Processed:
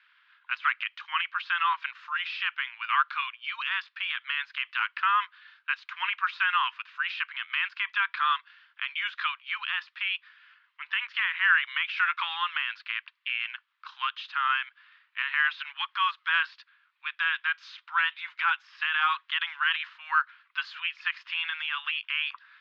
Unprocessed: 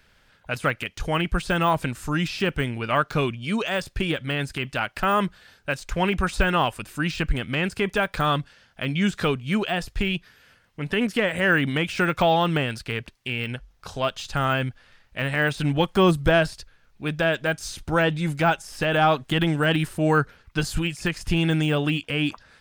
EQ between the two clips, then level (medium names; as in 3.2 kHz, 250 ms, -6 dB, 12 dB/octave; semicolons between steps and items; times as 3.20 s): steep high-pass 1 kHz 72 dB/octave; inverse Chebyshev low-pass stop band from 8.1 kHz, stop band 50 dB; 0.0 dB